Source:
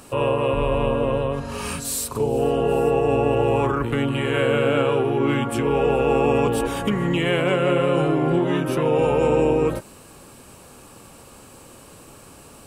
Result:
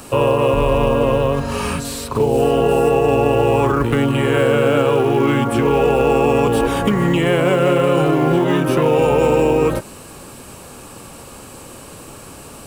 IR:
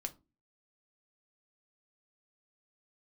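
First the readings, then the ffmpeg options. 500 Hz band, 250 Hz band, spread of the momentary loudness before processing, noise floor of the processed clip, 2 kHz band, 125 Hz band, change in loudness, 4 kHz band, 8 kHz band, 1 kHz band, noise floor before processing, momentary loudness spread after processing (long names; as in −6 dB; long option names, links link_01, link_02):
+5.0 dB, +5.0 dB, 5 LU, −38 dBFS, +4.5 dB, +5.5 dB, +5.0 dB, +4.0 dB, +1.0 dB, +5.5 dB, −46 dBFS, 4 LU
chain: -filter_complex "[0:a]acrossover=split=770|1600|4500[link_01][link_02][link_03][link_04];[link_01]acompressor=threshold=-21dB:ratio=4[link_05];[link_02]acompressor=threshold=-31dB:ratio=4[link_06];[link_03]acompressor=threshold=-39dB:ratio=4[link_07];[link_04]acompressor=threshold=-43dB:ratio=4[link_08];[link_05][link_06][link_07][link_08]amix=inputs=4:normalize=0,asplit=2[link_09][link_10];[link_10]acrusher=bits=5:mode=log:mix=0:aa=0.000001,volume=-5.5dB[link_11];[link_09][link_11]amix=inputs=2:normalize=0,volume=4.5dB"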